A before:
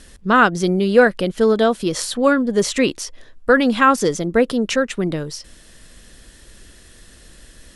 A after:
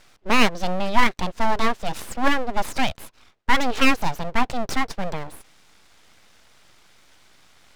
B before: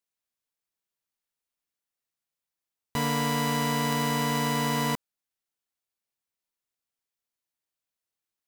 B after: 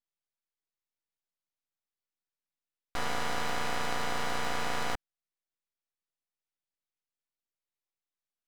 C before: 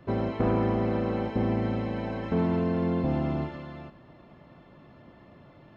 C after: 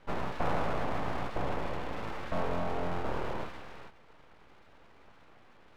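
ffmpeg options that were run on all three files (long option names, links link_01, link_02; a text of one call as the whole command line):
ffmpeg -i in.wav -af "highpass=230,lowpass=4000,aeval=exprs='abs(val(0))':channel_layout=same,volume=-1dB" out.wav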